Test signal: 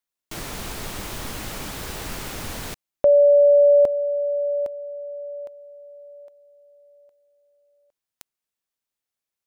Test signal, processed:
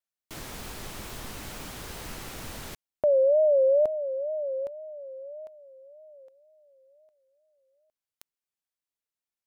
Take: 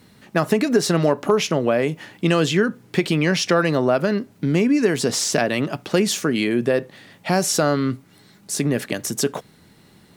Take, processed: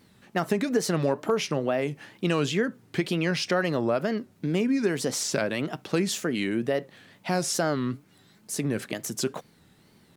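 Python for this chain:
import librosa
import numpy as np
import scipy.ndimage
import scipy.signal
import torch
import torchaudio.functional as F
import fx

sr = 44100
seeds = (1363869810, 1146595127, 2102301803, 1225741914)

y = fx.wow_flutter(x, sr, seeds[0], rate_hz=2.1, depth_cents=140.0)
y = y * librosa.db_to_amplitude(-7.0)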